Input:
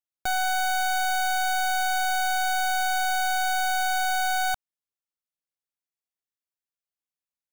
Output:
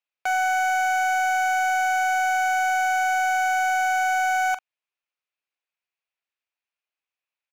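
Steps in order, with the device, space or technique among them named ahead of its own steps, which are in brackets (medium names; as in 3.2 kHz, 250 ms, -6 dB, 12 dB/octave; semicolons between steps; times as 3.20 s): megaphone (band-pass 540–3600 Hz; peaking EQ 2.5 kHz +9 dB 0.34 oct; hard clipper -24.5 dBFS, distortion -13 dB; doubling 43 ms -14 dB); trim +6 dB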